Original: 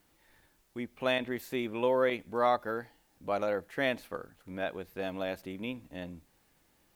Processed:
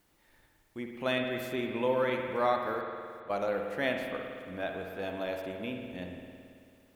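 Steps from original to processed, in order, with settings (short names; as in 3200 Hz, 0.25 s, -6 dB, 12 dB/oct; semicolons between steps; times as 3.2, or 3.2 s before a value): 2.81–3.3 auto swell 0.32 s; spring tank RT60 2.3 s, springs 55 ms, chirp 60 ms, DRR 2.5 dB; gain -1.5 dB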